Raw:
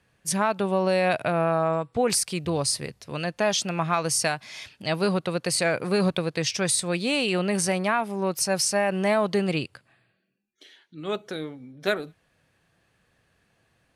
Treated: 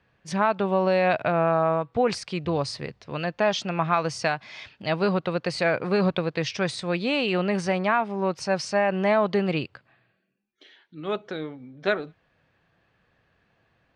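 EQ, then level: low-pass 4.6 kHz 12 dB/octave; distance through air 59 m; peaking EQ 990 Hz +2.5 dB 1.8 oct; 0.0 dB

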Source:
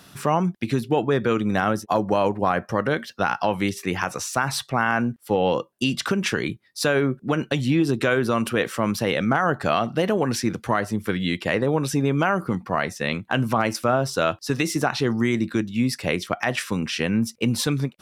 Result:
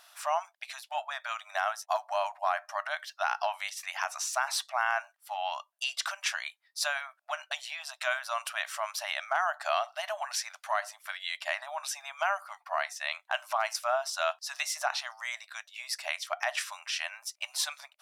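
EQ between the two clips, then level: dynamic bell 6.2 kHz, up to +4 dB, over -45 dBFS, Q 0.91; brick-wall FIR high-pass 590 Hz; -6.5 dB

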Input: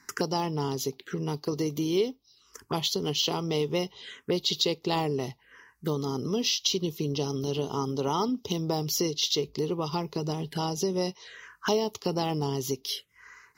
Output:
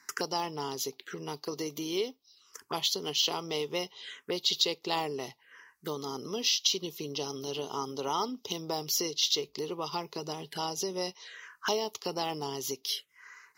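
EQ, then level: high-pass 710 Hz 6 dB/octave; 0.0 dB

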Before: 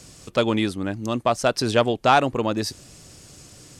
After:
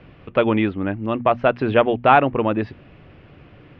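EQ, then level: steep low-pass 2.8 kHz 36 dB/octave; hum notches 60/120/180/240 Hz; +3.5 dB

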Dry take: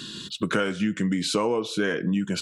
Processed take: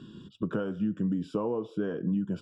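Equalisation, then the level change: boxcar filter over 21 samples; bass shelf 240 Hz +5 dB; -6.5 dB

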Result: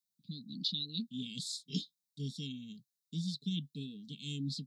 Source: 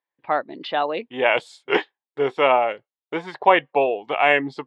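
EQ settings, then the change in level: high-pass 150 Hz 24 dB/octave; elliptic band-stop 200–1500 Hz, stop band 40 dB; Chebyshev band-stop 440–3800 Hz, order 5; +8.0 dB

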